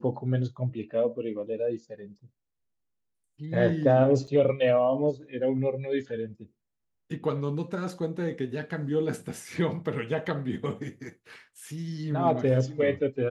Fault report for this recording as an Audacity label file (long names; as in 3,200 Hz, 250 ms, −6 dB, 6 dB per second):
4.270000	4.280000	drop-out 6.3 ms